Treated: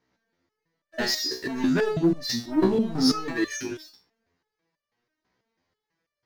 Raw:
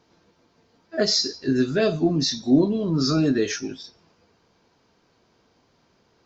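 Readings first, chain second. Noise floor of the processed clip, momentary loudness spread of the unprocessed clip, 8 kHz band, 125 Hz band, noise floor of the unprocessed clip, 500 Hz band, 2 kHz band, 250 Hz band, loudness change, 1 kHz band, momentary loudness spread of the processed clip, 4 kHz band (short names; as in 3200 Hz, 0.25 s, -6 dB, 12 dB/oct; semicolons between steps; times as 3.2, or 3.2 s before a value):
under -85 dBFS, 11 LU, n/a, -6.5 dB, -64 dBFS, -3.5 dB, +1.0 dB, -3.0 dB, -3.0 dB, +1.5 dB, 10 LU, -3.5 dB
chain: bell 1900 Hz +11 dB 0.41 oct; sample leveller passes 3; stepped resonator 6.1 Hz 63–590 Hz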